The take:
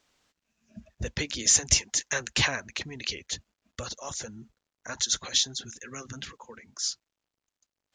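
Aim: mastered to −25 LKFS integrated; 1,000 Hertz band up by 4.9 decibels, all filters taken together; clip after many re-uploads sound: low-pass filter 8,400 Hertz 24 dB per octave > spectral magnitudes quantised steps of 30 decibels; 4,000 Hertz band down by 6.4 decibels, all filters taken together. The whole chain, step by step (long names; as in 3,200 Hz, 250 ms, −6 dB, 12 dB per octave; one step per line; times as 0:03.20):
low-pass filter 8,400 Hz 24 dB per octave
parametric band 1,000 Hz +6.5 dB
parametric band 4,000 Hz −9 dB
spectral magnitudes quantised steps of 30 dB
level +7 dB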